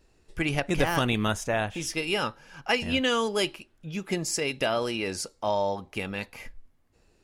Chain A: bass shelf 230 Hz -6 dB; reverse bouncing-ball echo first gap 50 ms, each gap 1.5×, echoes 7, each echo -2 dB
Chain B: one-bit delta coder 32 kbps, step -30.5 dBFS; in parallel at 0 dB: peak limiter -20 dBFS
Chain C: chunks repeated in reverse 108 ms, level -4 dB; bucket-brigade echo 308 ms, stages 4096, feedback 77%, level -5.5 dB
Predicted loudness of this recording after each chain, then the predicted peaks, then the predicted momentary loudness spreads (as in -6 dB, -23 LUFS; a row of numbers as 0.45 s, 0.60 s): -25.0 LUFS, -24.0 LUFS, -25.5 LUFS; -9.5 dBFS, -7.5 dBFS, -9.0 dBFS; 9 LU, 10 LU, 8 LU